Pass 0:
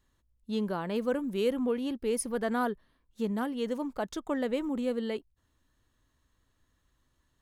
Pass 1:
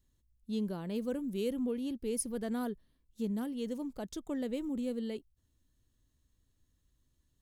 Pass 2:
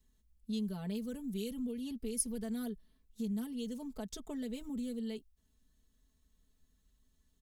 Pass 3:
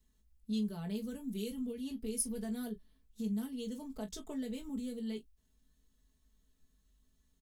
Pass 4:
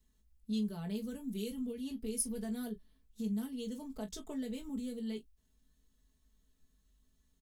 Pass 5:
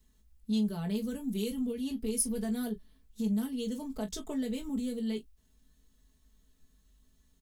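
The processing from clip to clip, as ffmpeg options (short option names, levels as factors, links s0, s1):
-af "equalizer=f=1200:w=0.47:g=-14"
-filter_complex "[0:a]aecho=1:1:4.6:0.97,acrossover=split=170|3000[s0][s1][s2];[s1]acompressor=threshold=0.01:ratio=6[s3];[s0][s3][s2]amix=inputs=3:normalize=0,volume=0.891"
-filter_complex "[0:a]asoftclip=type=hard:threshold=0.0668,asplit=2[s0][s1];[s1]aecho=0:1:19|41:0.473|0.178[s2];[s0][s2]amix=inputs=2:normalize=0,volume=0.891"
-af anull
-af "asoftclip=type=tanh:threshold=0.0596,volume=2"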